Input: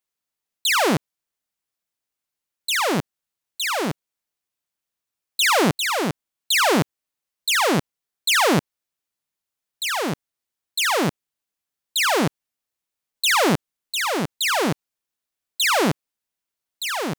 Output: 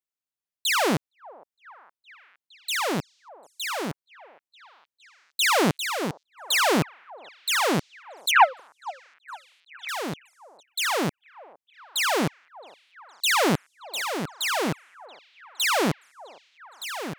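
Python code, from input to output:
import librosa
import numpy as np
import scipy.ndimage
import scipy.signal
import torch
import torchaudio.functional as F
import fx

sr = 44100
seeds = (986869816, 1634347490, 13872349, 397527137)

y = fx.sine_speech(x, sr, at=(8.31, 9.89))
y = fx.echo_stepped(y, sr, ms=463, hz=720.0, octaves=0.7, feedback_pct=70, wet_db=-11.5)
y = fx.upward_expand(y, sr, threshold_db=-31.0, expansion=1.5)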